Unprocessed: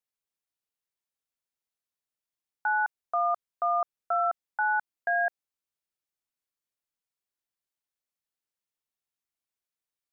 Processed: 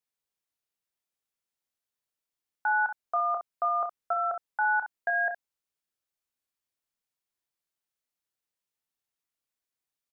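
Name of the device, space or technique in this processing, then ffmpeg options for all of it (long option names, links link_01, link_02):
slapback doubling: -filter_complex "[0:a]asplit=3[link_01][link_02][link_03];[link_02]adelay=28,volume=-8dB[link_04];[link_03]adelay=65,volume=-9dB[link_05];[link_01][link_04][link_05]amix=inputs=3:normalize=0"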